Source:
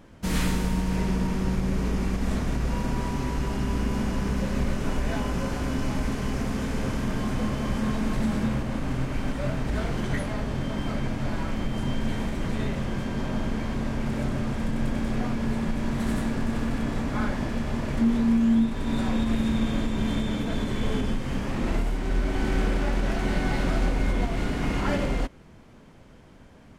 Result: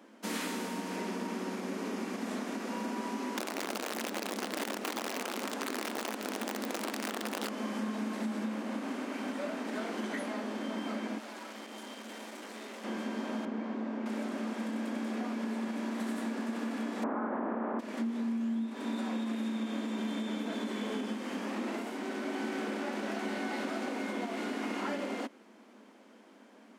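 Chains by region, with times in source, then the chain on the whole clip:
3.36–7.49 wrapped overs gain 20 dB + Doppler distortion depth 1 ms
11.18–12.84 tone controls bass -13 dB, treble +5 dB + tube stage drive 38 dB, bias 0.55
13.45–14.06 LPF 6600 Hz + high shelf 2200 Hz -12 dB
17.02–17.79 spectral contrast lowered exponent 0.65 + LPF 1300 Hz 24 dB/oct + fast leveller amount 100%
whole clip: Chebyshev high-pass 210 Hz, order 6; compressor, threshold -29 dBFS; gain -2.5 dB

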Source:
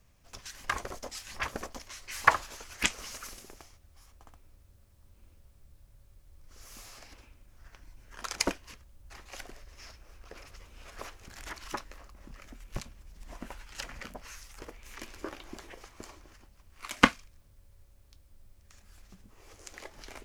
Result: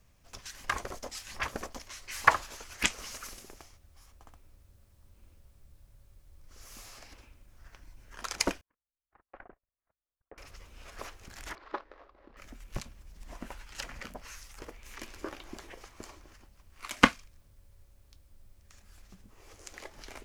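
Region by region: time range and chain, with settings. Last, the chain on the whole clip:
8.61–10.38 LPF 1600 Hz 24 dB/oct + low shelf 180 Hz -9.5 dB + gate -52 dBFS, range -42 dB
11.55–12.37 median filter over 15 samples + LPF 4500 Hz 24 dB/oct + resonant low shelf 250 Hz -14 dB, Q 1.5
whole clip: dry

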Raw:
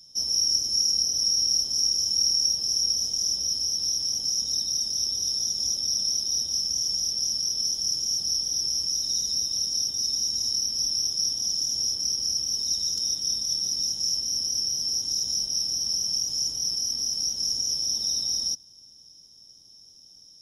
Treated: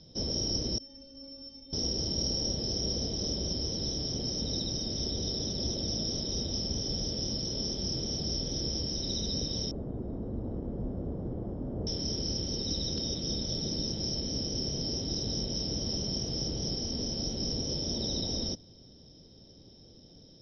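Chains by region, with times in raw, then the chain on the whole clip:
0.78–1.73 low shelf 210 Hz +7 dB + metallic resonator 270 Hz, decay 0.67 s, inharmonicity 0.008
9.71–11.87 LPF 1300 Hz 24 dB/oct + echo 0.747 s -7.5 dB
whole clip: steep low-pass 4500 Hz 48 dB/oct; resonant low shelf 720 Hz +9.5 dB, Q 1.5; gain +5.5 dB

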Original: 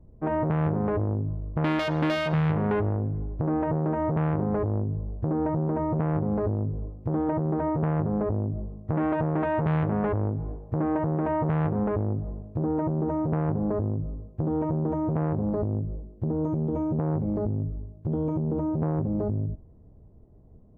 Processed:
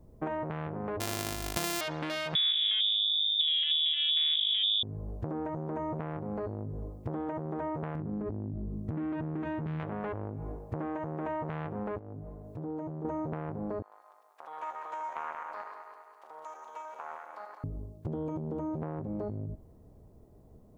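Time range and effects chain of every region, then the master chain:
1–1.81 sample sorter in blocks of 128 samples + bell 740 Hz +5.5 dB 0.21 oct
2.35–4.83 bell 860 Hz -15 dB 0.86 oct + inverted band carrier 3600 Hz
7.95–9.8 resonant low shelf 420 Hz +9.5 dB, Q 1.5 + compressor 4:1, threshold -21 dBFS
11.98–13.05 dynamic EQ 2100 Hz, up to -5 dB, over -50 dBFS, Q 0.76 + comb 6.8 ms, depth 43% + compressor 2.5:1, threshold -40 dBFS
13.82–17.64 regenerating reverse delay 0.101 s, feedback 72%, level -5 dB + HPF 1000 Hz 24 dB/oct + Doppler distortion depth 0.15 ms
whole clip: low shelf 260 Hz -8 dB; compressor 10:1, threshold -35 dBFS; high shelf 3000 Hz +11.5 dB; gain +3 dB

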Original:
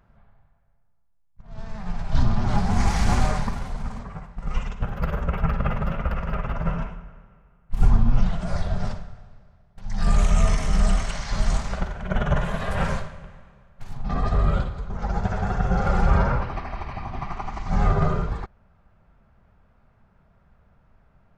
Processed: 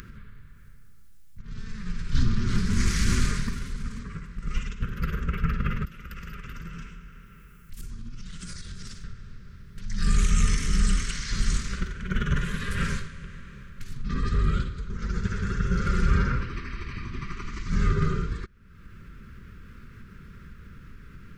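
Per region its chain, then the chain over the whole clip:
5.85–9.04 pre-emphasis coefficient 0.8 + compressor 4:1, threshold -37 dBFS
whole clip: Chebyshev band-stop 360–1500 Hz, order 2; tone controls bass -2 dB, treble +5 dB; upward compressor, threshold -29 dBFS

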